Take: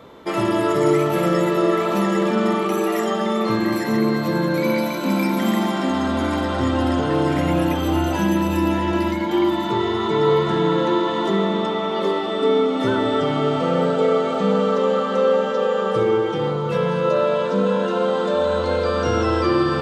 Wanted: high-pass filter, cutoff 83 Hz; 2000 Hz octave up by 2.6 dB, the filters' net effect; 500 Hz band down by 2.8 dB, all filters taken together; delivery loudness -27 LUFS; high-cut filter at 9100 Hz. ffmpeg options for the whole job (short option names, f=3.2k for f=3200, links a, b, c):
-af "highpass=83,lowpass=9.1k,equalizer=f=500:t=o:g=-3.5,equalizer=f=2k:t=o:g=3.5,volume=-6dB"